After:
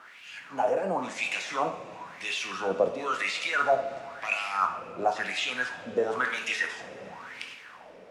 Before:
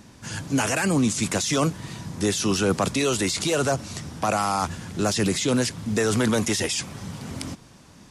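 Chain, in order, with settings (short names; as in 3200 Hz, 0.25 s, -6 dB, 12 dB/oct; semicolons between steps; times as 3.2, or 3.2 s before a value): AGC gain up to 8 dB; added noise pink -36 dBFS; wah 0.97 Hz 510–2700 Hz, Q 5.9; two-slope reverb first 0.6 s, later 4.3 s, from -19 dB, DRR 4 dB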